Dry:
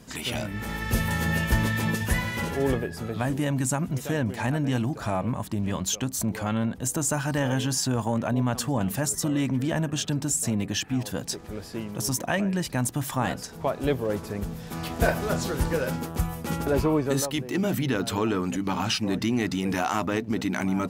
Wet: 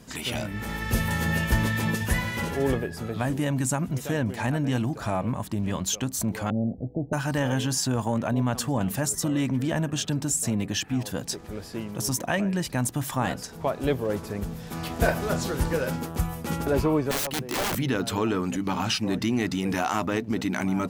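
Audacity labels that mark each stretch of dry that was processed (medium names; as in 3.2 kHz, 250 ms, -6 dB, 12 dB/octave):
6.500000	7.130000	steep low-pass 750 Hz 72 dB/octave
17.110000	17.770000	integer overflow gain 22.5 dB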